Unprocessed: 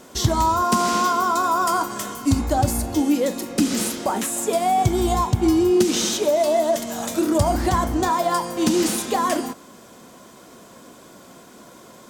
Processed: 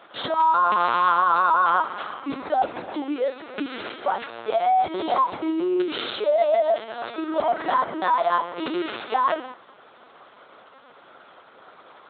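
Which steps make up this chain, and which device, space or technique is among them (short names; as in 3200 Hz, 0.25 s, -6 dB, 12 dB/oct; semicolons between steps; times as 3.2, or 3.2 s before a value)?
talking toy (LPC vocoder at 8 kHz pitch kept; HPF 470 Hz 12 dB/oct; bell 1400 Hz +5.5 dB 0.49 oct)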